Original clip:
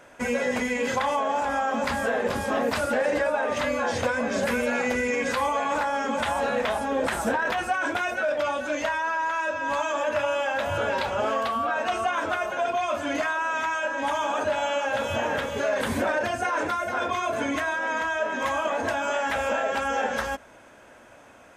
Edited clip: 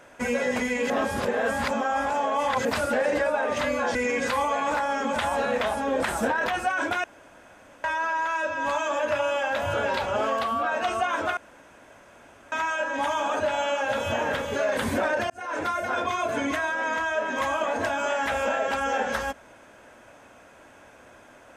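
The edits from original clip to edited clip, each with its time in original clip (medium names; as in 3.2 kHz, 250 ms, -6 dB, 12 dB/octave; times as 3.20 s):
0.90–2.65 s: reverse
3.95–4.99 s: delete
8.08–8.88 s: room tone
12.41–13.56 s: room tone
16.34–16.72 s: fade in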